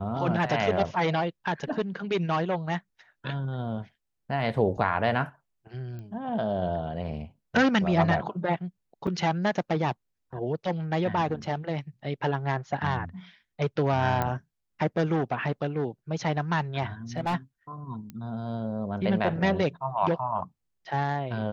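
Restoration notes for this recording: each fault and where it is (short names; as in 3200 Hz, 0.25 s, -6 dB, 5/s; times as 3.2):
5.99 pop -30 dBFS
9.07–9.08 gap 5.3 ms
14.22 pop -14 dBFS
17.17–17.35 clipped -23 dBFS
18.1 pop -26 dBFS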